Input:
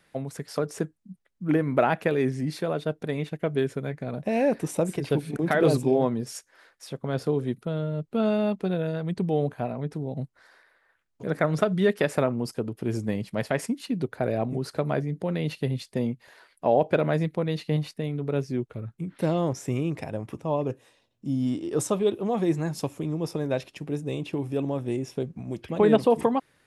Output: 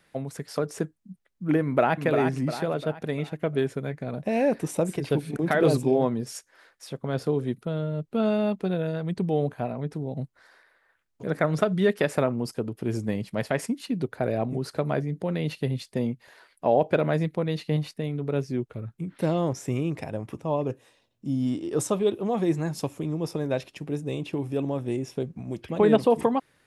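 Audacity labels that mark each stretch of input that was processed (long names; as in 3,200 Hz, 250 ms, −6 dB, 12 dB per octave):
1.620000	2.040000	delay throw 350 ms, feedback 45%, level −5.5 dB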